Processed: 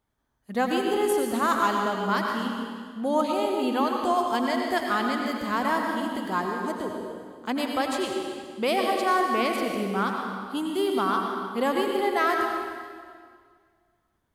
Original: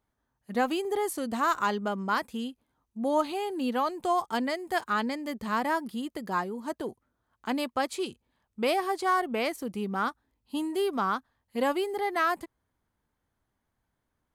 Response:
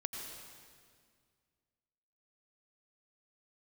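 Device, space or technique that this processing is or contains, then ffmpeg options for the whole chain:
stairwell: -filter_complex "[1:a]atrim=start_sample=2205[s0];[0:a][s0]afir=irnorm=-1:irlink=0,equalizer=f=3400:w=6.9:g=3,volume=1.5"

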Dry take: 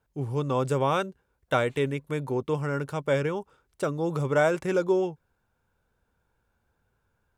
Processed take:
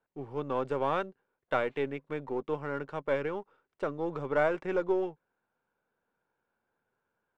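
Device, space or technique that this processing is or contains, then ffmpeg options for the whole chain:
crystal radio: -af "highpass=240,lowpass=2600,aeval=exprs='if(lt(val(0),0),0.708*val(0),val(0))':c=same,volume=0.708"

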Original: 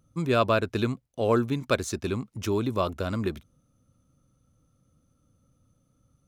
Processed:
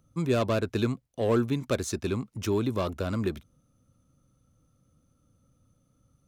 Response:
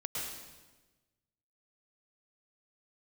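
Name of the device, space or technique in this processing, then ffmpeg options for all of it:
one-band saturation: -filter_complex "[0:a]acrossover=split=550|4500[s0][s1][s2];[s1]asoftclip=type=tanh:threshold=0.0316[s3];[s0][s3][s2]amix=inputs=3:normalize=0"

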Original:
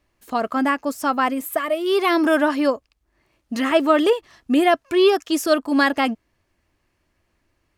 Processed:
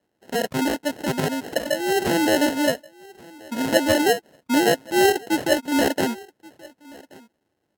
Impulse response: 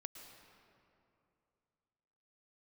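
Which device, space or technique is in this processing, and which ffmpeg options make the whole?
crushed at another speed: -af "asetrate=55125,aresample=44100,acrusher=samples=30:mix=1:aa=0.000001,asetrate=35280,aresample=44100,highpass=170,aecho=1:1:1129:0.0668,volume=0.841"

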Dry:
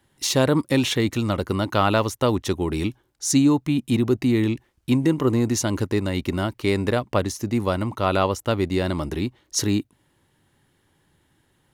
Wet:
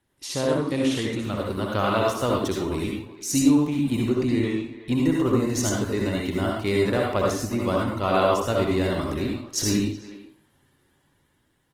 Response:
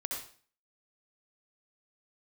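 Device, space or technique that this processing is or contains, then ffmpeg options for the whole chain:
speakerphone in a meeting room: -filter_complex "[0:a]asettb=1/sr,asplit=3[s0][s1][s2];[s0]atrim=end=4.024[s3];[s1]atrim=start=4.02:end=4.93,asetpts=PTS-STARTPTS,afade=t=in:d=0.004:c=qsin,afade=t=out:st=0.906:d=0.004:c=qsin,lowpass=9400[s4];[s2]atrim=start=4.926[s5];[s3][s4]acrossfade=d=0.004:c1=hsin:c2=qsin[s6];[s6][s5]acrossfade=d=0.004:c1=qsin:c2=hsin[s7];[1:a]atrim=start_sample=2205[s8];[s7][s8]afir=irnorm=-1:irlink=0,asplit=2[s9][s10];[s10]adelay=370,highpass=300,lowpass=3400,asoftclip=type=hard:threshold=0.211,volume=0.178[s11];[s9][s11]amix=inputs=2:normalize=0,dynaudnorm=f=240:g=11:m=2.24,volume=0.473" -ar 48000 -c:a libopus -b:a 20k

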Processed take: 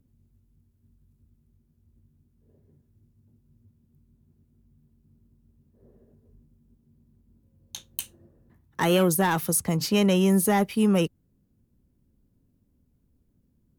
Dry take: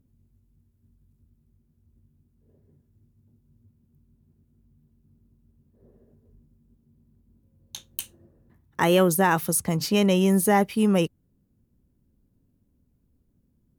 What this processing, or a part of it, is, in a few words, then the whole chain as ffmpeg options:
one-band saturation: -filter_complex "[0:a]acrossover=split=300|2300[s0][s1][s2];[s1]asoftclip=type=tanh:threshold=0.106[s3];[s0][s3][s2]amix=inputs=3:normalize=0"

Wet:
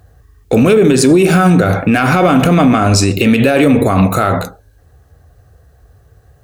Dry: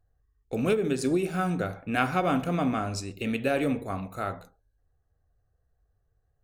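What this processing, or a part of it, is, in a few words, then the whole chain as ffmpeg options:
mastering chain: -af "highpass=f=55:w=0.5412,highpass=f=55:w=1.3066,equalizer=f=780:t=o:w=0.77:g=-1.5,acompressor=threshold=0.0398:ratio=3,asoftclip=type=tanh:threshold=0.133,alimiter=level_in=31.6:limit=0.891:release=50:level=0:latency=1,volume=0.891"

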